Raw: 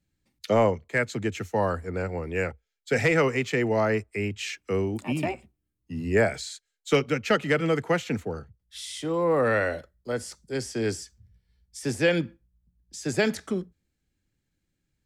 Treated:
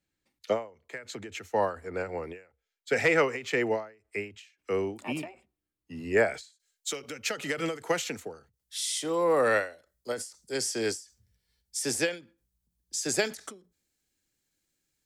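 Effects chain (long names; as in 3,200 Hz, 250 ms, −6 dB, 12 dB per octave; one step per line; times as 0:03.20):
bass and treble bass −12 dB, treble −2 dB, from 0:06.52 treble +9 dB
every ending faded ahead of time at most 160 dB per second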